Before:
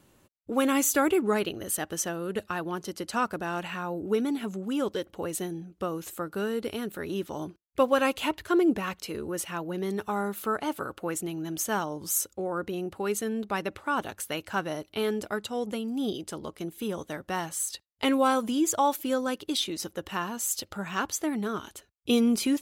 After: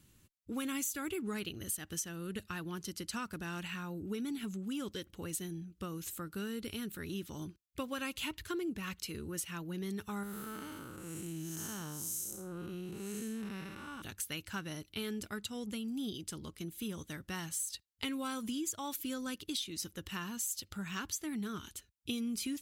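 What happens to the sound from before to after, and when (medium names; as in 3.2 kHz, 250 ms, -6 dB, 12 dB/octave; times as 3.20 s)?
10.23–14.02 s: spectral blur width 267 ms
whole clip: amplifier tone stack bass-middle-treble 6-0-2; compression 6:1, threshold -48 dBFS; trim +13.5 dB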